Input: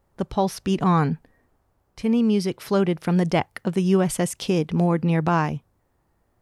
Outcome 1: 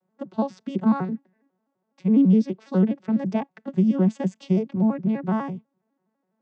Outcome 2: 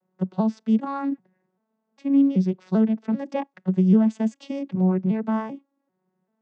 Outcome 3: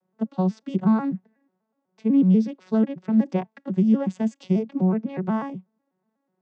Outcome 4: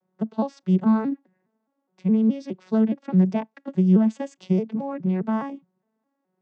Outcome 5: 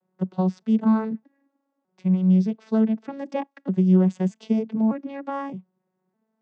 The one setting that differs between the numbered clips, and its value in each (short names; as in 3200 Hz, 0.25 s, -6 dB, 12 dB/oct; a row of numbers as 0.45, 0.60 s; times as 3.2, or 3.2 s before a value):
arpeggiated vocoder, a note every: 83, 392, 123, 208, 613 ms